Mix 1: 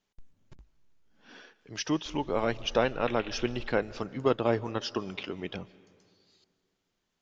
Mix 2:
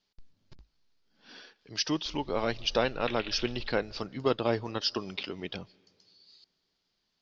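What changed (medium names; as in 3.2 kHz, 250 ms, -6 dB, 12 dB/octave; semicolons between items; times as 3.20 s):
speech: send -9.0 dB; master: add resonant low-pass 4.7 kHz, resonance Q 4.2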